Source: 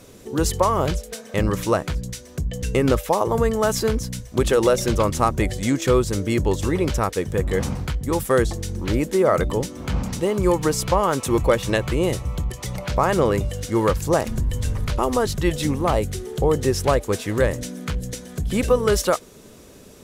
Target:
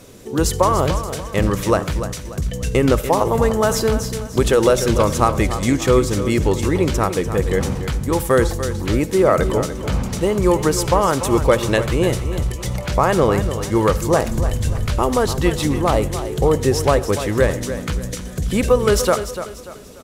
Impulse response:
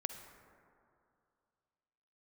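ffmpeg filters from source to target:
-filter_complex "[0:a]aecho=1:1:293|586|879|1172:0.282|0.104|0.0386|0.0143,asplit=2[link_01][link_02];[1:a]atrim=start_sample=2205,atrim=end_sample=6174[link_03];[link_02][link_03]afir=irnorm=-1:irlink=0,volume=-1dB[link_04];[link_01][link_04]amix=inputs=2:normalize=0,volume=-2dB"

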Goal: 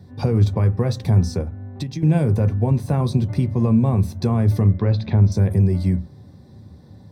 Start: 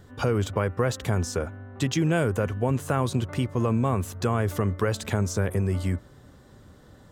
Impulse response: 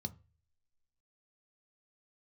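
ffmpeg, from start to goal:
-filter_complex "[1:a]atrim=start_sample=2205,afade=type=out:start_time=0.16:duration=0.01,atrim=end_sample=7497[link_01];[0:a][link_01]afir=irnorm=-1:irlink=0,asettb=1/sr,asplit=3[link_02][link_03][link_04];[link_02]atrim=end=1.414[link_05];[link_03]atrim=start=1.41:end=2.03,asetpts=PTS-STARTPTS,afade=type=in:duration=0.004:curve=qsin,afade=type=out:start_time=0.616:duration=0.004:curve=qsin,acompressor=threshold=-25dB:ratio=6[link_06];[link_04]atrim=start=2.026[link_07];[link_05][link_06]acrossfade=duration=0.004:curve1=hsin:curve2=qsin[link_08];[link_08][link_07]acrossfade=duration=0.004:curve1=qsin:curve2=hsin,asettb=1/sr,asplit=3[link_09][link_10][link_11];[link_09]atrim=end=4.714[link_12];[link_10]atrim=start=4.71:end=5.32,asetpts=PTS-STARTPTS,afade=type=in:duration=0.004:curve=qsin,afade=type=out:start_time=0.606:duration=0.004:curve=qsin,lowpass=frequency=4100:width=0.5412,lowpass=frequency=4100:width=1.3066[link_13];[link_11]atrim=start=5.316[link_14];[link_12][link_13]acrossfade=duration=0.004:curve1=hsin:curve2=qsin[link_15];[link_15][link_14]acrossfade=duration=0.004:curve1=qsin:curve2=hsin"

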